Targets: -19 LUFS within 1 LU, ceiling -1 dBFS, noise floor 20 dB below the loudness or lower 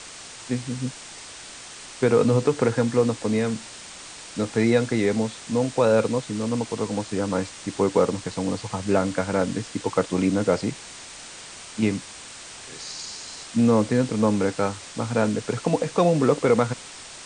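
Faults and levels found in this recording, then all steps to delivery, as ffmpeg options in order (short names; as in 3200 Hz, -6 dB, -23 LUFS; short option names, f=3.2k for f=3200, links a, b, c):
noise floor -41 dBFS; noise floor target -44 dBFS; loudness -24.0 LUFS; peak -6.5 dBFS; loudness target -19.0 LUFS
-> -af "afftdn=nr=6:nf=-41"
-af "volume=5dB"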